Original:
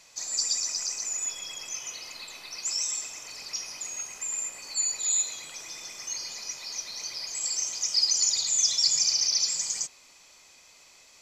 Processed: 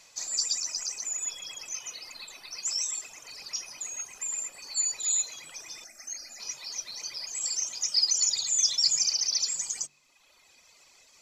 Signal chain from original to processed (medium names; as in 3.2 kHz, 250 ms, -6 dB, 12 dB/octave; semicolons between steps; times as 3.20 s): 5.84–6.40 s: static phaser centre 670 Hz, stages 8; reverb removal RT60 1.4 s; de-hum 48.36 Hz, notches 9